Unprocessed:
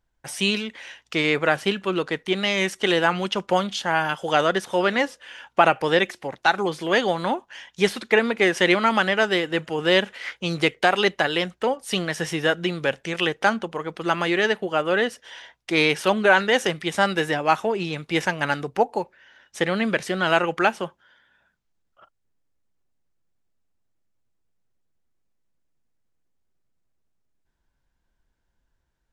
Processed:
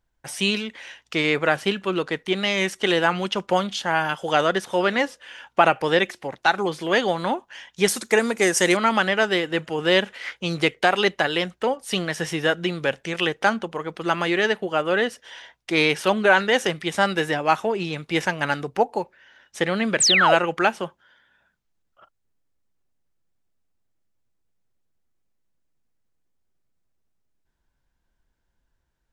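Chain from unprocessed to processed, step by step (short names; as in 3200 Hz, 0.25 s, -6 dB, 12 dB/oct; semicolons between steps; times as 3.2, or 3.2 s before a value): 7.88–8.77 resonant high shelf 4900 Hz +12.5 dB, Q 1.5; 20–20.35 painted sound fall 480–9000 Hz -17 dBFS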